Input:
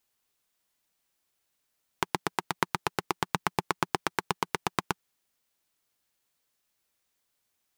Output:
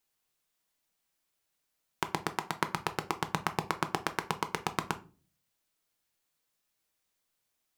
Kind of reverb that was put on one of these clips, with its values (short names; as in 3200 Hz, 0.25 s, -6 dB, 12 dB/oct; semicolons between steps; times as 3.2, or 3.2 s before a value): shoebox room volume 220 m³, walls furnished, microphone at 0.58 m; gain -3 dB